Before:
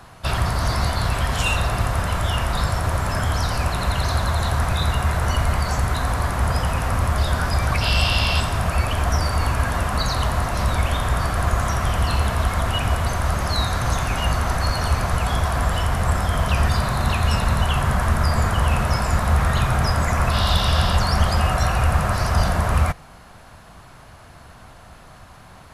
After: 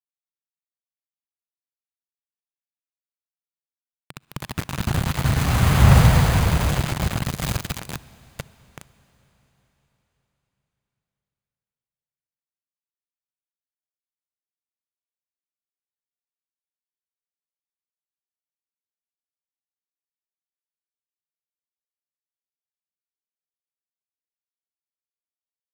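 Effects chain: self-modulated delay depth 0.86 ms; Doppler pass-by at 5.96 s, 32 m/s, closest 7.9 m; treble shelf 8.7 kHz -11.5 dB; bit crusher 5-bit; peaking EQ 140 Hz +13 dB 1.1 oct; band-stop 5.5 kHz, Q 14; reverberation RT60 4.6 s, pre-delay 36 ms, DRR 19 dB; trim +4.5 dB

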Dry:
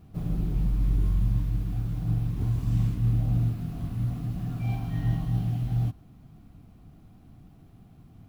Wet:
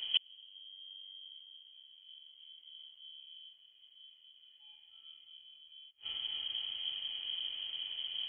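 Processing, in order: thinning echo 272 ms, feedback 74%, high-pass 880 Hz, level -16.5 dB; inverted gate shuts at -28 dBFS, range -40 dB; frequency inversion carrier 3.2 kHz; trim +9.5 dB

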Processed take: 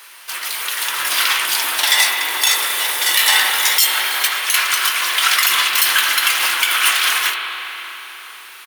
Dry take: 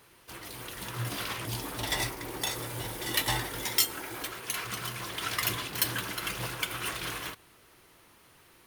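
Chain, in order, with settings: high-pass 1.3 kHz 12 dB/octave; doubling 20 ms -12 dB; spring tank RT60 3.9 s, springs 38/55 ms, chirp 25 ms, DRR 3.5 dB; loudness maximiser +21 dB; trim -1 dB

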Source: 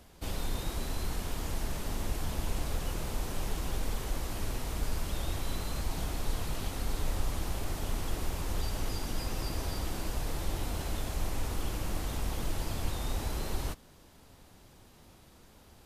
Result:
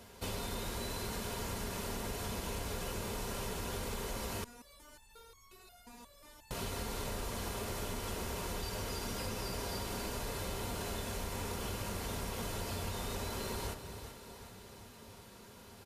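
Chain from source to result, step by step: high-pass 79 Hz 12 dB/octave; feedback delay 380 ms, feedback 57%, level -15.5 dB; reverberation RT60 0.55 s, pre-delay 4 ms, DRR 3.5 dB; compression 4:1, threshold -38 dBFS, peak gain reduction 6.5 dB; 4.44–6.51 s: resonator arpeggio 5.6 Hz 240–1100 Hz; trim +2 dB

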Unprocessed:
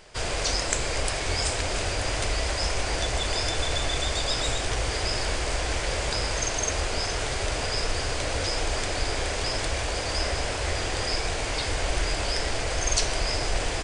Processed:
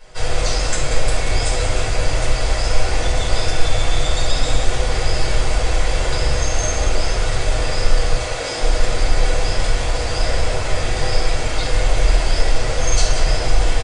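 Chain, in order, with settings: 8.16–8.60 s: high-pass 580 Hz -> 140 Hz 12 dB/octave; loudspeakers at several distances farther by 24 m -11 dB, 63 m -9 dB; simulated room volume 230 m³, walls furnished, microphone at 5.3 m; trim -5.5 dB

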